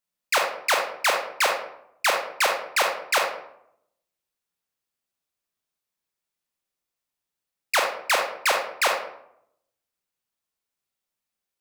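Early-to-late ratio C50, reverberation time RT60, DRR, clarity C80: 4.5 dB, 0.75 s, 2.0 dB, 8.0 dB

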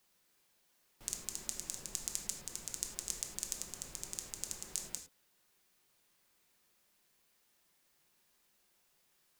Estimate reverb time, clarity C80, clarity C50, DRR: no single decay rate, 12.0 dB, 8.0 dB, 3.0 dB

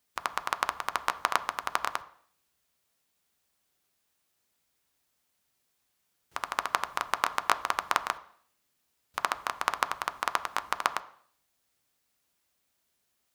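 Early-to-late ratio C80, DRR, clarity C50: 20.0 dB, 10.0 dB, 17.0 dB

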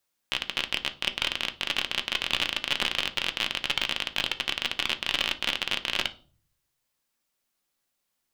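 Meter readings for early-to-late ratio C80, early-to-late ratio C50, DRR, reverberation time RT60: 23.0 dB, 16.5 dB, 7.0 dB, 0.40 s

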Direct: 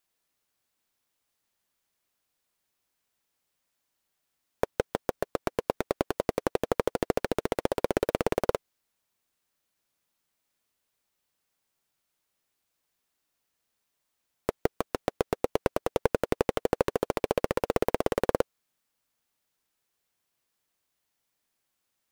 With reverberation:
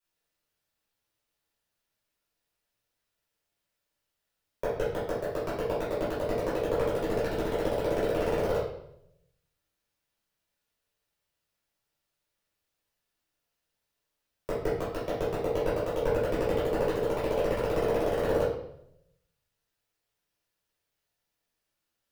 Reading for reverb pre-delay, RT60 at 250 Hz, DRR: 5 ms, 0.85 s, -10.5 dB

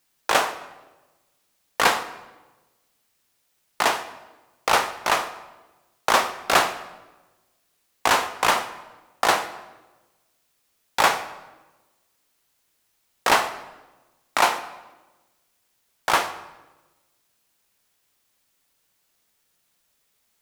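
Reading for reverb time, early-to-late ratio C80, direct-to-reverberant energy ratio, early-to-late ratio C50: 1.2 s, 14.5 dB, 10.0 dB, 12.5 dB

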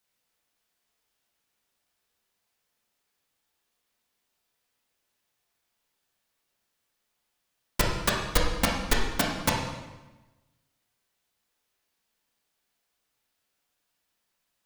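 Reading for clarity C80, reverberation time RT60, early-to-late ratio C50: 5.0 dB, 1.1 s, 2.5 dB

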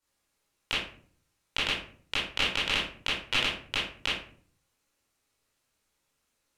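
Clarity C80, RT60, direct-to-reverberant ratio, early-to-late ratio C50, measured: 7.0 dB, 0.50 s, -10.0 dB, 1.5 dB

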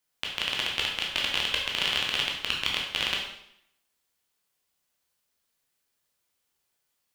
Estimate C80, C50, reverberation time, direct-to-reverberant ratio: 6.5 dB, 3.0 dB, 0.70 s, -2.0 dB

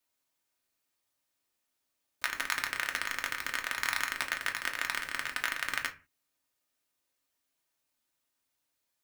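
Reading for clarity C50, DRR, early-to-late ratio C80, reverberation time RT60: 15.0 dB, 2.0 dB, 21.0 dB, no single decay rate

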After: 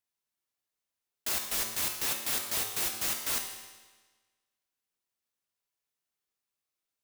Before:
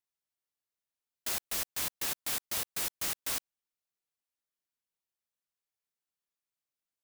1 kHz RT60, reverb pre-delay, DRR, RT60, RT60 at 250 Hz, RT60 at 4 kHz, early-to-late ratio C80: 1.3 s, 4 ms, 2.0 dB, 1.3 s, 1.3 s, 1.3 s, 6.5 dB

